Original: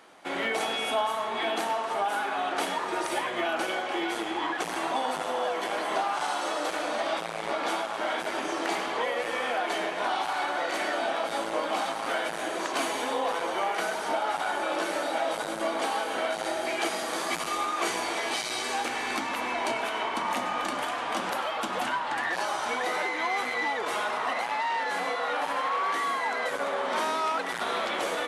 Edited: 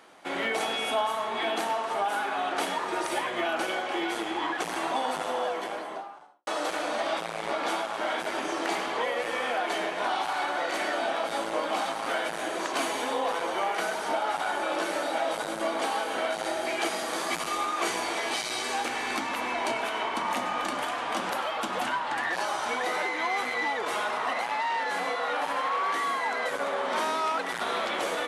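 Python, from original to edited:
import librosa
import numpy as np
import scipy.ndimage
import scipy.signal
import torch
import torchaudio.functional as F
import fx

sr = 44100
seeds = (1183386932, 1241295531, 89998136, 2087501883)

y = fx.studio_fade_out(x, sr, start_s=5.3, length_s=1.17)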